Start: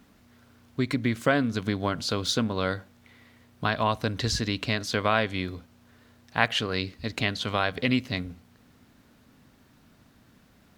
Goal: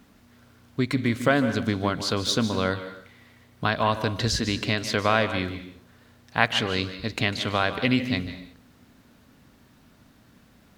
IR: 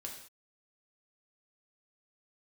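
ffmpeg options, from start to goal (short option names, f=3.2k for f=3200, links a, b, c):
-filter_complex "[0:a]asplit=2[a][b];[1:a]atrim=start_sample=2205,adelay=149[c];[b][c]afir=irnorm=-1:irlink=0,volume=-8dB[d];[a][d]amix=inputs=2:normalize=0,volume=2dB"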